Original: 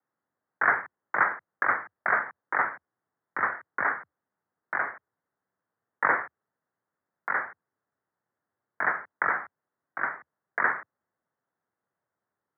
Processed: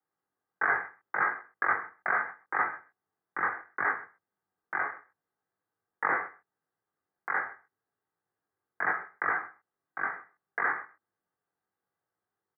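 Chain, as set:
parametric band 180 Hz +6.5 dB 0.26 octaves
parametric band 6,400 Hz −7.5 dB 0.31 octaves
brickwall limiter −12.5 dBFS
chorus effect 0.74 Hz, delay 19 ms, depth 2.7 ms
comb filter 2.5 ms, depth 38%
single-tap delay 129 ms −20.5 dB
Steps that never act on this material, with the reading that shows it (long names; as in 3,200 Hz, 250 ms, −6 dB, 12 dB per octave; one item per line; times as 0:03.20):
parametric band 6,400 Hz: nothing at its input above 2,400 Hz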